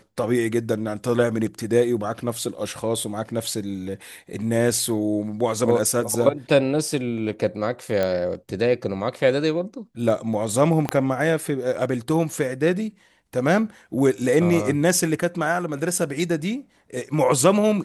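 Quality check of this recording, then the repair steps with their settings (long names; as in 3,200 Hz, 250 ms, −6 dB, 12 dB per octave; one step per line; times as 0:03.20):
0:08.03: click −11 dBFS
0:10.89: click −8 dBFS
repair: click removal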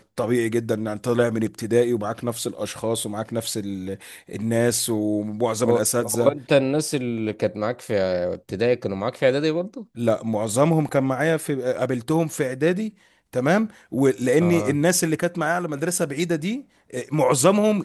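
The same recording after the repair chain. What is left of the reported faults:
0:10.89: click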